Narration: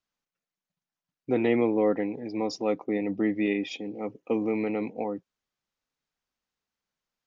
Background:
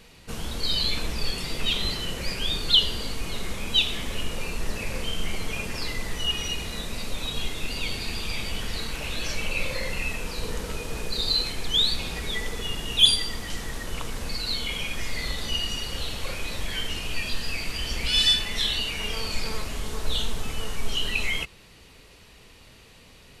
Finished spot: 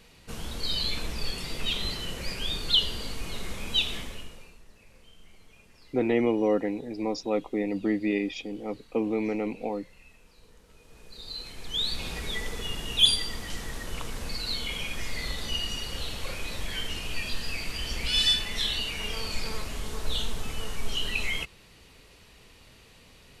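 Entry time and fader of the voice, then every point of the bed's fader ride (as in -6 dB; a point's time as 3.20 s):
4.65 s, -0.5 dB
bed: 3.97 s -4 dB
4.65 s -25.5 dB
10.65 s -25.5 dB
12.07 s -3 dB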